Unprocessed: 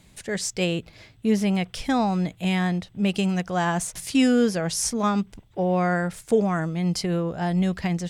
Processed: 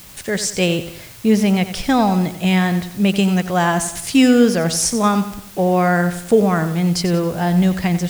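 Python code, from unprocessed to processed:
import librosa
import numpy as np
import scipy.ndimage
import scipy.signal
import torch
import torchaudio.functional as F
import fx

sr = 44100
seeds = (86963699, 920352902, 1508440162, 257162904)

p1 = fx.quant_dither(x, sr, seeds[0], bits=6, dither='triangular')
p2 = x + (p1 * librosa.db_to_amplitude(-10.0))
p3 = fx.echo_feedback(p2, sr, ms=91, feedback_pct=44, wet_db=-12)
y = p3 * librosa.db_to_amplitude(4.5)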